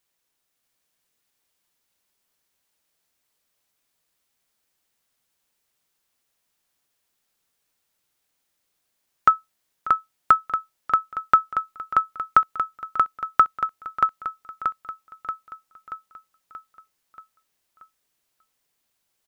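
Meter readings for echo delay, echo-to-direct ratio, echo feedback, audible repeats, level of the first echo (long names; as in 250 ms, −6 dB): 631 ms, −2.5 dB, 55%, 6, −4.0 dB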